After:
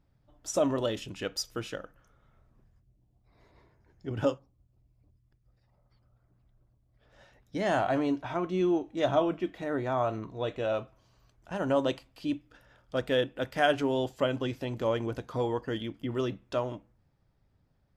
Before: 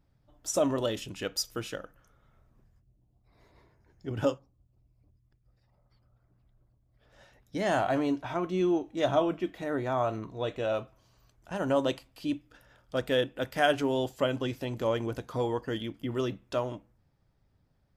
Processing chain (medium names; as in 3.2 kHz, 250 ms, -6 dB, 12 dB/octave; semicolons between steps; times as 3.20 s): treble shelf 8.7 kHz -9.5 dB